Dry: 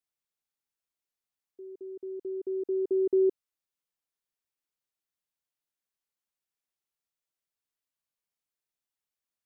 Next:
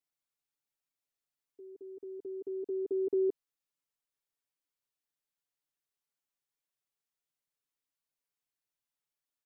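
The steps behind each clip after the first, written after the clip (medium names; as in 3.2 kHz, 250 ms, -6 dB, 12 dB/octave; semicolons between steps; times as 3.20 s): comb 7 ms, depth 99%; trim -5 dB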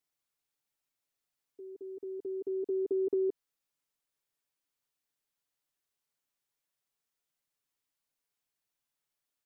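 compression, threshold -31 dBFS, peak gain reduction 4.5 dB; trim +3.5 dB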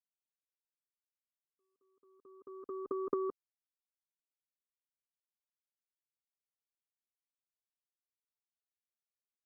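power-law waveshaper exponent 3; trim +3.5 dB; Opus 48 kbps 48 kHz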